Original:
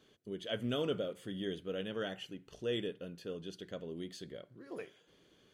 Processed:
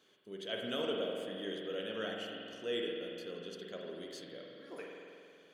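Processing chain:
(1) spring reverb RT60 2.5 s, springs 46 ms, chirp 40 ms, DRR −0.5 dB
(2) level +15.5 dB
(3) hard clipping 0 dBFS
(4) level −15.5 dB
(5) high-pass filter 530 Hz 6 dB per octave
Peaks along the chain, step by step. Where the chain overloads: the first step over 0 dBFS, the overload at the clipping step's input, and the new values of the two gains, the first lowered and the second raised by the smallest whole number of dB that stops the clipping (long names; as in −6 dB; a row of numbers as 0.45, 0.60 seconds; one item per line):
−20.5, −5.0, −5.0, −20.5, −23.0 dBFS
no step passes full scale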